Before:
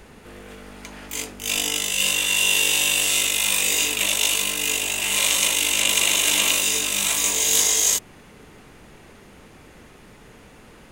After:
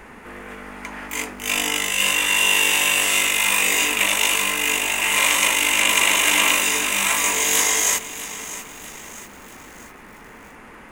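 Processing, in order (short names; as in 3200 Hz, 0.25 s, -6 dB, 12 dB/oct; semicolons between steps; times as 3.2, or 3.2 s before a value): ten-band EQ 125 Hz -5 dB, 250 Hz +5 dB, 1000 Hz +8 dB, 2000 Hz +9 dB, 4000 Hz -6 dB; lo-fi delay 0.644 s, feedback 55%, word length 6-bit, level -13.5 dB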